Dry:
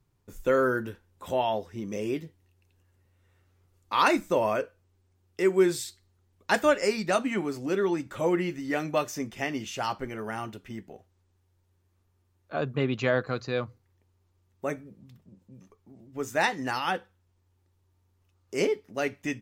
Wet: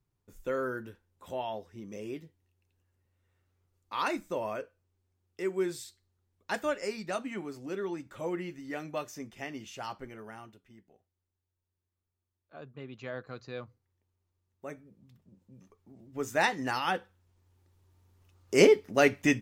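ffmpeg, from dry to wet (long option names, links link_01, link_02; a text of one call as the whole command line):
ffmpeg -i in.wav -af "volume=15dB,afade=type=out:start_time=10.05:duration=0.6:silence=0.375837,afade=type=in:start_time=12.88:duration=0.61:silence=0.473151,afade=type=in:start_time=14.68:duration=1.49:silence=0.334965,afade=type=in:start_time=16.92:duration=1.72:silence=0.398107" out.wav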